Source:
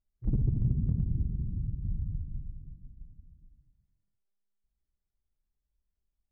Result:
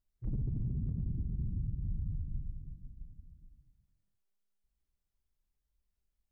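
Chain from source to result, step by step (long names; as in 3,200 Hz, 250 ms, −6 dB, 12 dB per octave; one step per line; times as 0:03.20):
brickwall limiter −28.5 dBFS, peak gain reduction 10.5 dB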